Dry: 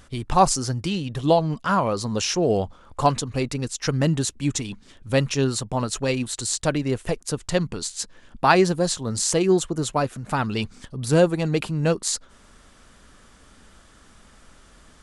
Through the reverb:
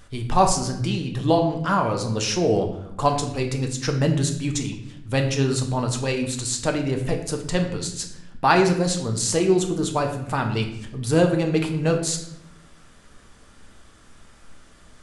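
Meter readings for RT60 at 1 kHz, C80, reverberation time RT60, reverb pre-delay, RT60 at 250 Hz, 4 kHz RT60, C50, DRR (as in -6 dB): 0.70 s, 10.5 dB, 0.80 s, 3 ms, 1.2 s, 0.60 s, 8.5 dB, 3.0 dB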